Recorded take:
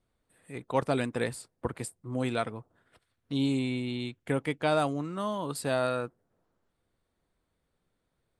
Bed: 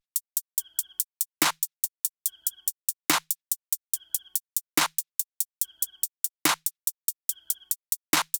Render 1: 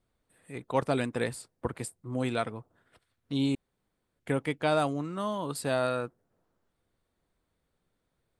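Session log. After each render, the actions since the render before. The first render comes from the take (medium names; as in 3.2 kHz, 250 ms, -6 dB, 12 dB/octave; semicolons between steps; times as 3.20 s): 3.55–4.19 s: room tone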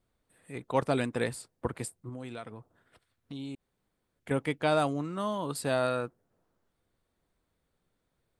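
2.09–4.31 s: compression 3:1, threshold -40 dBFS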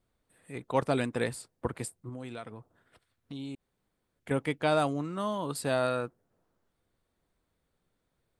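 no audible change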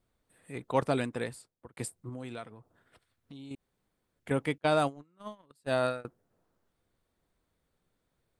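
0.86–1.77 s: fade out; 2.46–3.51 s: compression 1.5:1, threshold -55 dBFS; 4.58–6.05 s: gate -30 dBFS, range -32 dB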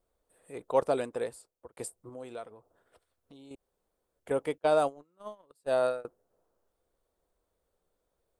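ten-band graphic EQ 125 Hz -11 dB, 250 Hz -6 dB, 500 Hz +6 dB, 2 kHz -7 dB, 4 kHz -4 dB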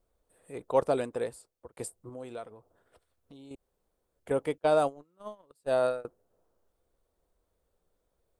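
bass shelf 210 Hz +5.5 dB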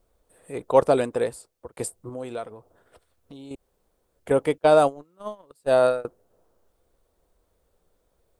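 trim +8 dB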